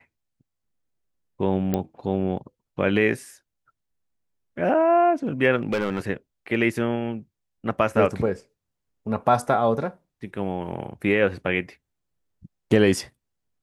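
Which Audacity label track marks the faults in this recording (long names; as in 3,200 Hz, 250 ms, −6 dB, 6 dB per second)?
1.740000	1.740000	click −11 dBFS
5.560000	5.990000	clipping −19.5 dBFS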